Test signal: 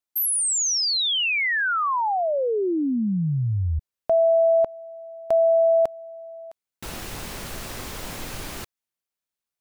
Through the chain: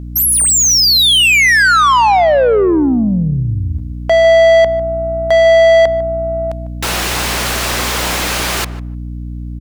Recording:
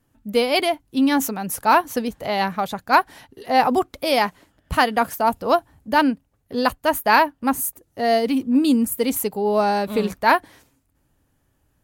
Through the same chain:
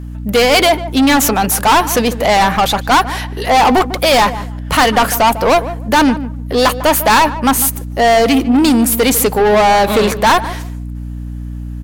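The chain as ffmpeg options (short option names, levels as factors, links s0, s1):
-filter_complex "[0:a]asplit=2[s0][s1];[s1]highpass=f=720:p=1,volume=20,asoftclip=type=tanh:threshold=0.794[s2];[s0][s2]amix=inputs=2:normalize=0,lowpass=f=7100:p=1,volume=0.501,aeval=exprs='val(0)+0.0447*(sin(2*PI*60*n/s)+sin(2*PI*2*60*n/s)/2+sin(2*PI*3*60*n/s)/3+sin(2*PI*4*60*n/s)/4+sin(2*PI*5*60*n/s)/5)':c=same,acontrast=52,asplit=2[s3][s4];[s4]adelay=150,lowpass=f=1100:p=1,volume=0.251,asplit=2[s5][s6];[s6]adelay=150,lowpass=f=1100:p=1,volume=0.2,asplit=2[s7][s8];[s8]adelay=150,lowpass=f=1100:p=1,volume=0.2[s9];[s5][s7][s9]amix=inputs=3:normalize=0[s10];[s3][s10]amix=inputs=2:normalize=0,volume=0.631"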